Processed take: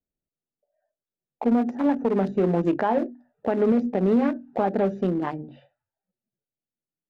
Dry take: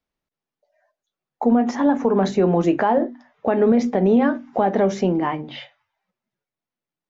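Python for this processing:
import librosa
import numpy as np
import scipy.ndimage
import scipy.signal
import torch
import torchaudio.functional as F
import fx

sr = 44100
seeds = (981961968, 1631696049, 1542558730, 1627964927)

y = fx.wiener(x, sr, points=41)
y = F.gain(torch.from_numpy(y), -3.5).numpy()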